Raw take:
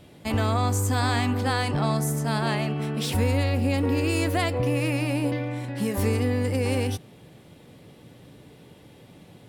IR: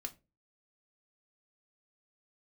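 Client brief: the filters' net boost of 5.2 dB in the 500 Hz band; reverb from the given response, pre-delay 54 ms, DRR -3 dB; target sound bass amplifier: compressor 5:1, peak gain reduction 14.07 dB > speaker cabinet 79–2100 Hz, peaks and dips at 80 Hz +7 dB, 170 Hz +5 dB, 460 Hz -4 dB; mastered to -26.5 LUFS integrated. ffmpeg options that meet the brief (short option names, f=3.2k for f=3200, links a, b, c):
-filter_complex "[0:a]equalizer=f=500:t=o:g=8.5,asplit=2[a][b];[1:a]atrim=start_sample=2205,adelay=54[c];[b][c]afir=irnorm=-1:irlink=0,volume=5.5dB[d];[a][d]amix=inputs=2:normalize=0,acompressor=threshold=-26dB:ratio=5,highpass=f=79:w=0.5412,highpass=f=79:w=1.3066,equalizer=f=80:t=q:w=4:g=7,equalizer=f=170:t=q:w=4:g=5,equalizer=f=460:t=q:w=4:g=-4,lowpass=f=2.1k:w=0.5412,lowpass=f=2.1k:w=1.3066,volume=2.5dB"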